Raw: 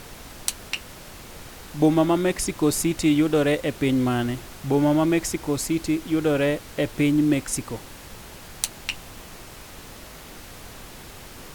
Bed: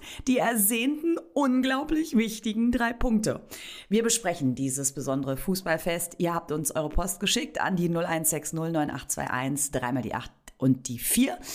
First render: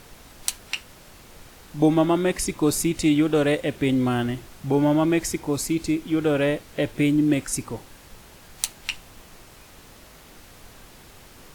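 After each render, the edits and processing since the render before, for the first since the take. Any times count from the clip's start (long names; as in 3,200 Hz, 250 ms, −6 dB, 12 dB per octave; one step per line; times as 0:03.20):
noise reduction from a noise print 6 dB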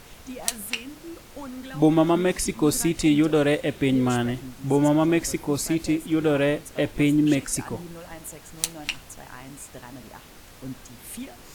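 mix in bed −14 dB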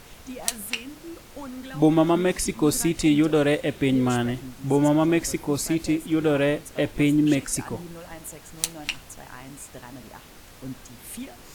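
no processing that can be heard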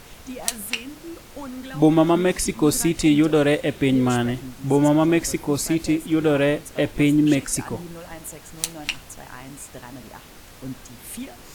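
level +2.5 dB
brickwall limiter −1 dBFS, peak gain reduction 2.5 dB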